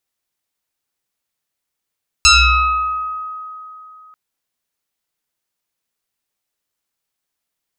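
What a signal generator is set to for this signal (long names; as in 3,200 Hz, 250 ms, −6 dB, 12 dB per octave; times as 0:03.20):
two-operator FM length 1.89 s, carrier 1,260 Hz, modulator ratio 1.05, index 5, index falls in 1.35 s exponential, decay 3.10 s, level −5 dB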